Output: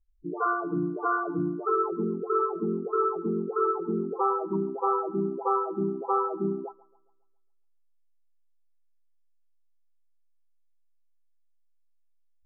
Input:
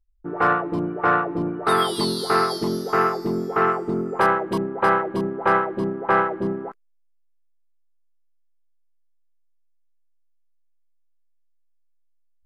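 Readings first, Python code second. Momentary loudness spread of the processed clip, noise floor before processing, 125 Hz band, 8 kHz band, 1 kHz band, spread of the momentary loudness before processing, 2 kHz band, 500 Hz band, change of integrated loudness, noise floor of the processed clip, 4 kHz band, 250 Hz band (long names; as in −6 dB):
4 LU, −63 dBFS, −6.0 dB, can't be measured, −7.0 dB, 6 LU, below −10 dB, −4.5 dB, −6.5 dB, −65 dBFS, below −40 dB, −4.5 dB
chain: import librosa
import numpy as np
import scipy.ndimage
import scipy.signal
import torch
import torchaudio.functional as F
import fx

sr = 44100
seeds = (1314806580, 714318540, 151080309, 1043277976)

y = fx.air_absorb(x, sr, metres=360.0)
y = fx.spec_topn(y, sr, count=8)
y = fx.echo_wet_bandpass(y, sr, ms=137, feedback_pct=45, hz=1100.0, wet_db=-19)
y = y * 10.0 ** (-2.0 / 20.0)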